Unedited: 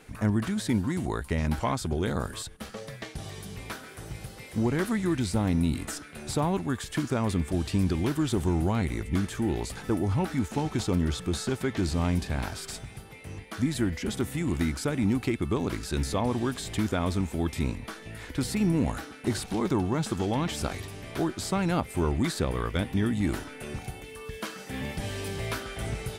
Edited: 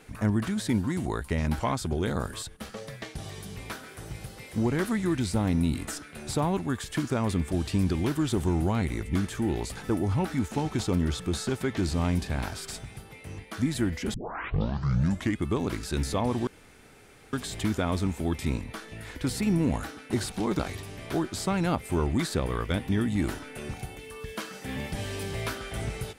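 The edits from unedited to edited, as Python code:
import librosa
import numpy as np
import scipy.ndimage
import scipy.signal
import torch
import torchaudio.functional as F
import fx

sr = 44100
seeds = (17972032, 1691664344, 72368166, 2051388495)

y = fx.edit(x, sr, fx.tape_start(start_s=14.14, length_s=1.31),
    fx.insert_room_tone(at_s=16.47, length_s=0.86),
    fx.cut(start_s=19.73, length_s=0.91), tone=tone)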